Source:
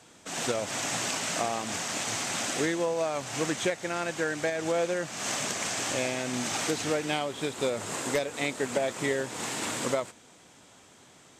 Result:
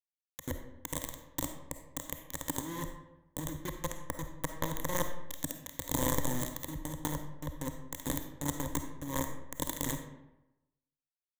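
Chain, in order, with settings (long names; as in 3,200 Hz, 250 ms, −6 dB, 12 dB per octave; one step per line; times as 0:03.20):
linear-phase brick-wall band-stop 390–8,000 Hz
hollow resonant body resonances 420/2,700 Hz, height 7 dB, ringing for 40 ms
bit reduction 5 bits
EQ curve with evenly spaced ripples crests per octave 1.1, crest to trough 14 dB
compressor whose output falls as the input rises −36 dBFS, ratio −1
low-shelf EQ 100 Hz +9 dB
on a send: convolution reverb RT60 0.95 s, pre-delay 10 ms, DRR 6 dB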